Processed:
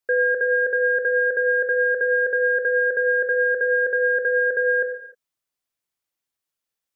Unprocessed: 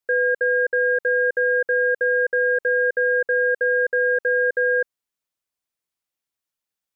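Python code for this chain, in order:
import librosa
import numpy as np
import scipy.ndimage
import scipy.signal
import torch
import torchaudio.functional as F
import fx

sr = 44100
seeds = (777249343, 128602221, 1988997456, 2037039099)

y = fx.rev_gated(x, sr, seeds[0], gate_ms=330, shape='falling', drr_db=6.0)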